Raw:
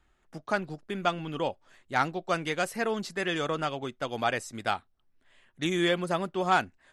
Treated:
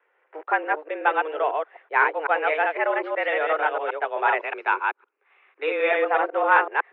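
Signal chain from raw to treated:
delay that plays each chunk backwards 126 ms, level −2.5 dB
single-sideband voice off tune +150 Hz 240–2,400 Hz
0:04.40–0:05.91: comb filter 0.8 ms, depth 46%
level +6 dB

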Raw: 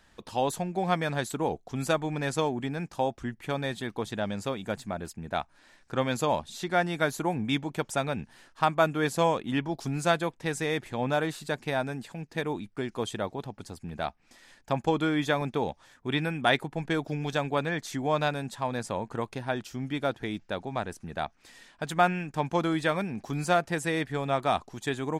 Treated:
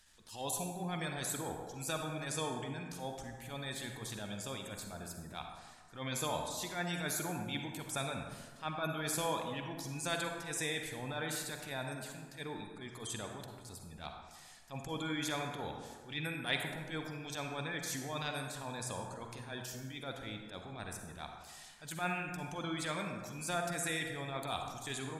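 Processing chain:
first-order pre-emphasis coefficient 0.9
gate on every frequency bin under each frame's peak −20 dB strong
low-shelf EQ 98 Hz +10.5 dB
transient designer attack −12 dB, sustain +3 dB
on a send: convolution reverb RT60 1.6 s, pre-delay 37 ms, DRR 3 dB
on the sum: level +5 dB

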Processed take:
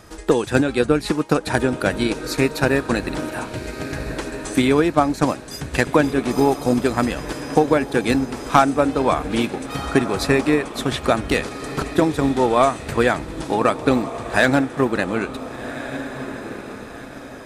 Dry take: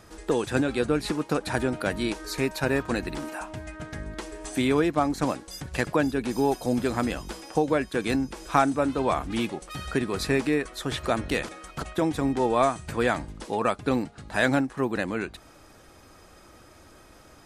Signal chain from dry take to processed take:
feedback delay with all-pass diffusion 1,489 ms, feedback 42%, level −10.5 dB
gain into a clipping stage and back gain 11 dB
transient designer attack +4 dB, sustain −2 dB
level +5.5 dB

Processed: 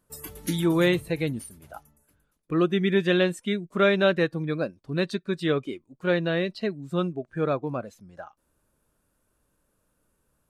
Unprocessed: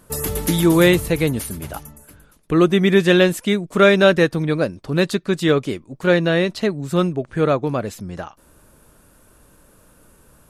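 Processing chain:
noise reduction from a noise print of the clip's start 12 dB
level −8 dB

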